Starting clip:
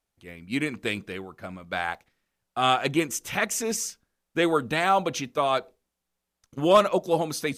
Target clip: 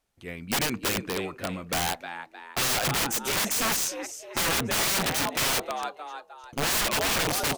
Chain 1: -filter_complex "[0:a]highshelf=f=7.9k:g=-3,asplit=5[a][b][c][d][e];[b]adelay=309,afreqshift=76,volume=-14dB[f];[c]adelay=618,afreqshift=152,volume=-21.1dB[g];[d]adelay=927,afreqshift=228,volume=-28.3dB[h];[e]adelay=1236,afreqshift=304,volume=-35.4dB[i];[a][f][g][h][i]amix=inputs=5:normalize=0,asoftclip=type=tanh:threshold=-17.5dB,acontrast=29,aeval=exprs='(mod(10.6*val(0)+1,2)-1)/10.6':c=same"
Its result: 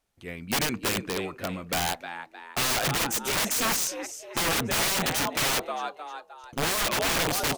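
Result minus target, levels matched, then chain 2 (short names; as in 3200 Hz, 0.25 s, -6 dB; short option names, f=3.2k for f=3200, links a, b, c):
soft clip: distortion +17 dB
-filter_complex "[0:a]highshelf=f=7.9k:g=-3,asplit=5[a][b][c][d][e];[b]adelay=309,afreqshift=76,volume=-14dB[f];[c]adelay=618,afreqshift=152,volume=-21.1dB[g];[d]adelay=927,afreqshift=228,volume=-28.3dB[h];[e]adelay=1236,afreqshift=304,volume=-35.4dB[i];[a][f][g][h][i]amix=inputs=5:normalize=0,asoftclip=type=tanh:threshold=-5.5dB,acontrast=29,aeval=exprs='(mod(10.6*val(0)+1,2)-1)/10.6':c=same"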